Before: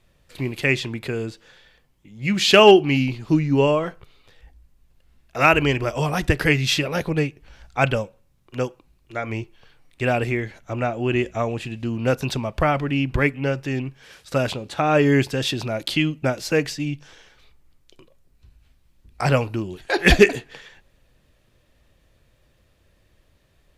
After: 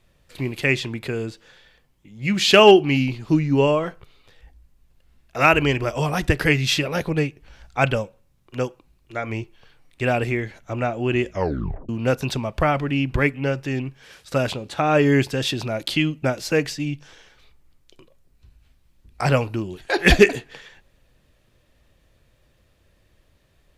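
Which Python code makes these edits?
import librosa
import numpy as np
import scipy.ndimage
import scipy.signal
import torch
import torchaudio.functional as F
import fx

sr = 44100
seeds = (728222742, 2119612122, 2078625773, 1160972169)

y = fx.edit(x, sr, fx.tape_stop(start_s=11.3, length_s=0.59), tone=tone)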